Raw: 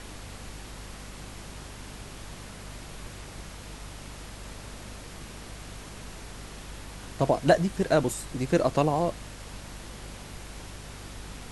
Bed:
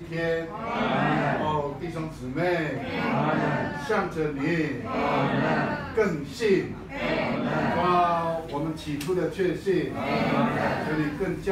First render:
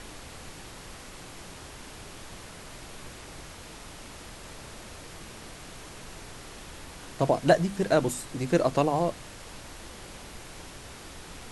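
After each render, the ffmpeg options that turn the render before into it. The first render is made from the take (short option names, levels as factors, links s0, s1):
-af "bandreject=f=50:t=h:w=6,bandreject=f=100:t=h:w=6,bandreject=f=150:t=h:w=6,bandreject=f=200:t=h:w=6,bandreject=f=250:t=h:w=6"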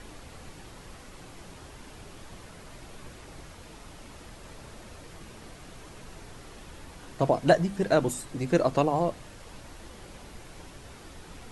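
-af "afftdn=nr=6:nf=-45"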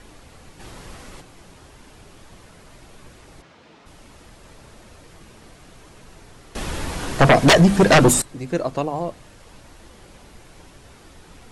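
-filter_complex "[0:a]asplit=3[s0][s1][s2];[s0]afade=t=out:st=0.59:d=0.02[s3];[s1]acontrast=73,afade=t=in:st=0.59:d=0.02,afade=t=out:st=1.2:d=0.02[s4];[s2]afade=t=in:st=1.2:d=0.02[s5];[s3][s4][s5]amix=inputs=3:normalize=0,asplit=3[s6][s7][s8];[s6]afade=t=out:st=3.41:d=0.02[s9];[s7]highpass=160,lowpass=4300,afade=t=in:st=3.41:d=0.02,afade=t=out:st=3.85:d=0.02[s10];[s8]afade=t=in:st=3.85:d=0.02[s11];[s9][s10][s11]amix=inputs=3:normalize=0,asettb=1/sr,asplit=3[s12][s13][s14];[s12]atrim=end=6.554[s15];[s13]atrim=start=6.55:end=8.22,asetpts=PTS-STARTPTS,afade=t=in:d=0.004:c=qsin,afade=t=out:st=1.666:d=0.004:c=qsin,aeval=exprs='0.422*sin(PI/2*5.01*val(0)/0.422)':c=same[s16];[s14]atrim=start=8.216[s17];[s15][s16]acrossfade=d=0.004:c1=hsin:c2=qsin[s18];[s18][s17]acrossfade=d=0.004:c1=qsin:c2=hsin"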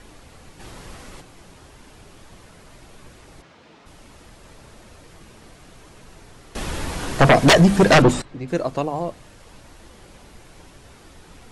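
-filter_complex "[0:a]asettb=1/sr,asplit=3[s0][s1][s2];[s0]atrim=end=8.024[s3];[s1]atrim=start=8.02:end=8.48,asetpts=PTS-STARTPTS,afade=t=in:d=0.004:c=qsin,afade=t=out:st=0.456:d=0.004:c=qsin,lowpass=3700[s4];[s2]atrim=start=8.476[s5];[s3][s4]acrossfade=d=0.004:c1=hsin:c2=qsin[s6];[s6][s5]acrossfade=d=0.004:c1=qsin:c2=hsin"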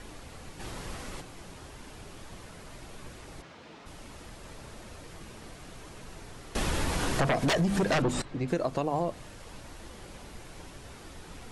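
-af "alimiter=limit=0.188:level=0:latency=1:release=139,acompressor=threshold=0.0631:ratio=6"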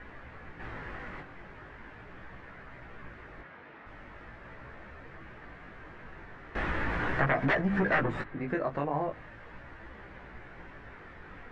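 -af "lowpass=f=1800:t=q:w=2.9,flanger=delay=15:depth=5.7:speed=0.4"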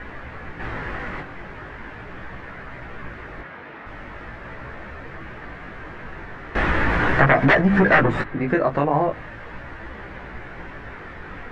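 -af "volume=3.76"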